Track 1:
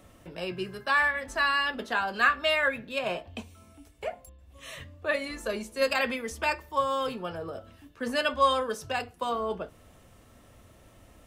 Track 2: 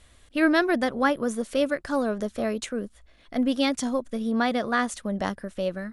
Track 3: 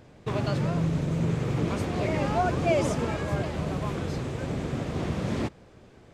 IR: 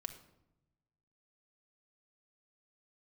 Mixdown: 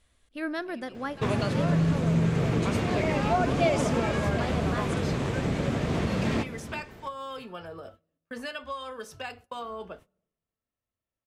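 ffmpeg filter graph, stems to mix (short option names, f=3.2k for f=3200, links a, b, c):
-filter_complex "[0:a]agate=range=-33dB:threshold=-44dB:ratio=16:detection=peak,acompressor=threshold=-29dB:ratio=10,adelay=300,volume=-6dB,asplit=2[a][b];[b]volume=-17.5dB[c];[1:a]volume=-13.5dB,asplit=3[d][e][f];[e]volume=-8dB[g];[2:a]adelay=950,volume=1dB,asplit=3[h][i][j];[i]volume=-4.5dB[k];[j]volume=-14.5dB[l];[f]apad=whole_len=510003[m];[a][m]sidechaincompress=threshold=-48dB:ratio=8:attack=16:release=527[n];[n][h]amix=inputs=2:normalize=0,equalizer=f=2.2k:w=0.59:g=4,acompressor=threshold=-27dB:ratio=6,volume=0dB[o];[3:a]atrim=start_sample=2205[p];[c][g][k]amix=inputs=3:normalize=0[q];[q][p]afir=irnorm=-1:irlink=0[r];[l]aecho=0:1:378:1[s];[d][o][r][s]amix=inputs=4:normalize=0"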